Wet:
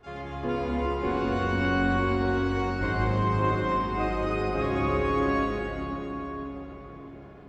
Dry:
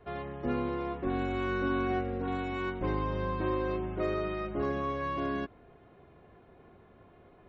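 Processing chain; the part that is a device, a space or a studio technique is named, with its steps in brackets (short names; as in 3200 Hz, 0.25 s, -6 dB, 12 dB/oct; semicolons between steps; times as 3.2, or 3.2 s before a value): shimmer-style reverb (harmoniser +12 st -11 dB; reverb RT60 4.8 s, pre-delay 93 ms, DRR -4.5 dB)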